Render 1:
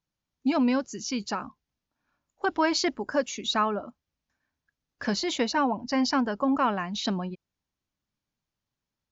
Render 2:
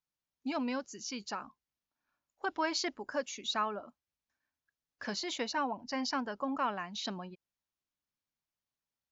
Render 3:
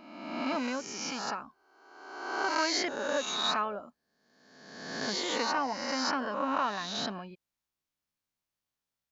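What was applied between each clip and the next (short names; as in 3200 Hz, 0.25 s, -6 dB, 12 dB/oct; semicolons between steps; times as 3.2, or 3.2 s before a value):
low shelf 360 Hz -8.5 dB; gain -6.5 dB
spectral swells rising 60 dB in 1.23 s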